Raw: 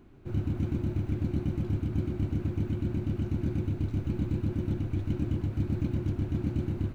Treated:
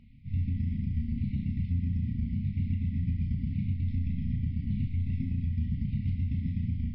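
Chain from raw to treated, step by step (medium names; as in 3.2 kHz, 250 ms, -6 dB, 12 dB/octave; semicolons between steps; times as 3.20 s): sawtooth pitch modulation -5 st, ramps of 1176 ms; brick-wall FIR band-stop 260–1900 Hz; bass shelf 240 Hz -3 dB; on a send: flutter echo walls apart 5.9 m, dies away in 0.27 s; on the sum: peak limiter -26.5 dBFS, peak gain reduction 7 dB; treble shelf 2.7 kHz -11 dB; hum notches 60/120/180/240/300/360/420/480/540/600 Hz; trim +6 dB; MP3 24 kbps 12 kHz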